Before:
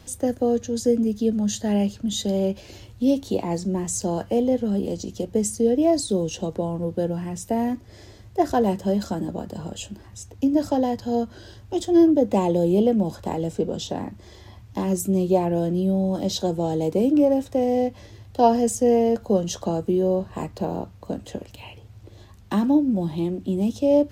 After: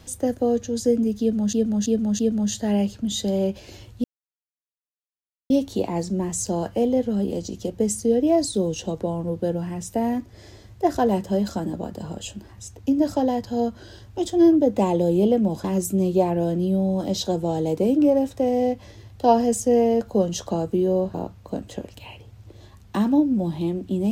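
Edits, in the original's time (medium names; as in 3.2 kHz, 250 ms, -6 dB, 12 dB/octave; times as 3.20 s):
1.20–1.53 s: loop, 4 plays
3.05 s: insert silence 1.46 s
13.19–14.79 s: delete
20.29–20.71 s: delete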